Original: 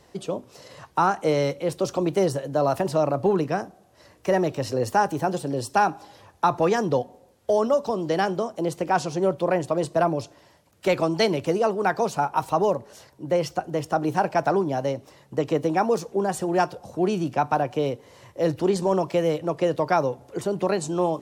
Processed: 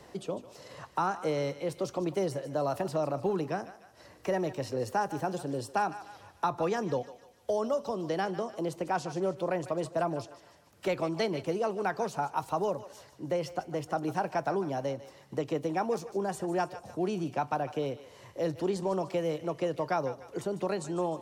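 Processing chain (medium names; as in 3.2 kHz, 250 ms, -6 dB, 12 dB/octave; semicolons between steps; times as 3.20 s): thinning echo 149 ms, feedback 43%, high-pass 840 Hz, level -13.5 dB; three bands compressed up and down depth 40%; trim -8.5 dB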